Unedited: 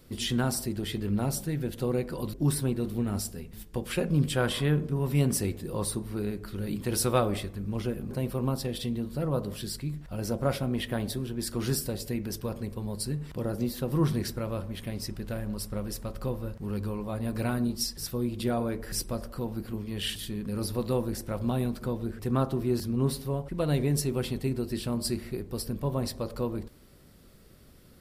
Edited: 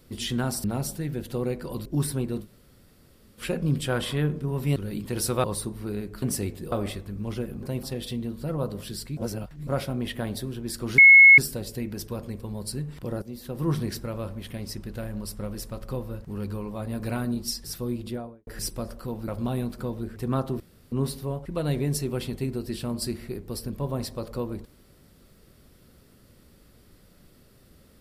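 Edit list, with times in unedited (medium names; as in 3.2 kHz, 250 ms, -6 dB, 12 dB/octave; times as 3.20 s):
0.64–1.12 s: delete
2.91–3.88 s: room tone, crossfade 0.10 s
5.24–5.74 s: swap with 6.52–7.20 s
8.31–8.56 s: delete
9.90–10.40 s: reverse
11.71 s: add tone 2.18 kHz -8 dBFS 0.40 s
13.55–14.05 s: fade in, from -13.5 dB
18.24–18.80 s: studio fade out
19.61–21.31 s: delete
22.63–22.95 s: room tone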